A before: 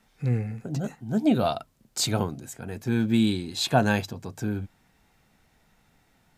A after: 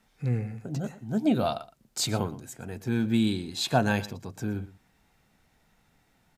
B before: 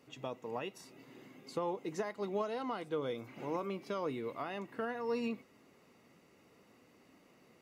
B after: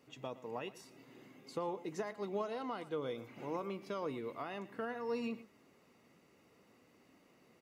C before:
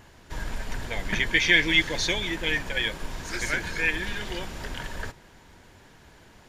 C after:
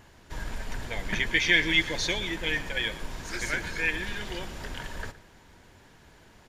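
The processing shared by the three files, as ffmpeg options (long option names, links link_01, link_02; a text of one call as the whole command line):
ffmpeg -i in.wav -filter_complex "[0:a]asplit=2[link_01][link_02];[link_02]adelay=116.6,volume=-17dB,highshelf=frequency=4000:gain=-2.62[link_03];[link_01][link_03]amix=inputs=2:normalize=0,volume=-2.5dB" out.wav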